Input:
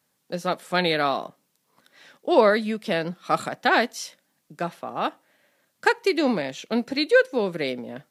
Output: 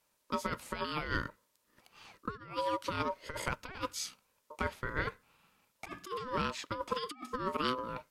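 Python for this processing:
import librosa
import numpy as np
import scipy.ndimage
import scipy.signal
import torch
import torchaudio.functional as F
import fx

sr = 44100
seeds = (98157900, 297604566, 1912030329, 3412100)

y = x * np.sin(2.0 * np.pi * 760.0 * np.arange(len(x)) / sr)
y = fx.over_compress(y, sr, threshold_db=-29.0, ratio=-0.5)
y = y * librosa.db_to_amplitude(-6.0)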